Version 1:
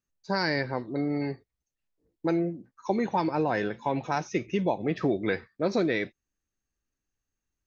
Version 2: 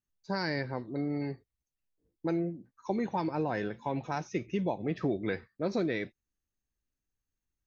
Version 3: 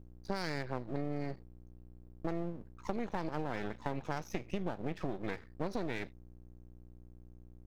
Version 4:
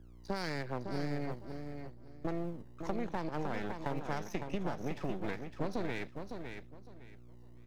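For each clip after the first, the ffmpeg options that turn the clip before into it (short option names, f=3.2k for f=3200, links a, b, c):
-af "lowshelf=f=240:g=5.5,volume=-6.5dB"
-af "aeval=exprs='val(0)+0.002*(sin(2*PI*60*n/s)+sin(2*PI*2*60*n/s)/2+sin(2*PI*3*60*n/s)/3+sin(2*PI*4*60*n/s)/4+sin(2*PI*5*60*n/s)/5)':c=same,acompressor=threshold=-35dB:ratio=6,aeval=exprs='max(val(0),0)':c=same,volume=4.5dB"
-filter_complex "[0:a]aecho=1:1:558|1116|1674:0.447|0.103|0.0236,acrossover=split=110|1200[a][b][c];[a]acrusher=samples=26:mix=1:aa=0.000001:lfo=1:lforange=41.6:lforate=0.84[d];[d][b][c]amix=inputs=3:normalize=0"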